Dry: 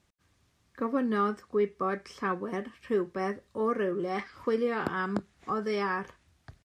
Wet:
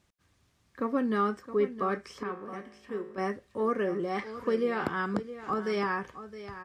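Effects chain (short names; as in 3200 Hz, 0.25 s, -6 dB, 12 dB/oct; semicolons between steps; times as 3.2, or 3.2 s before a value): 2.23–3.18 resonator 53 Hz, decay 0.95 s, harmonics all, mix 70%; on a send: echo 0.666 s -13 dB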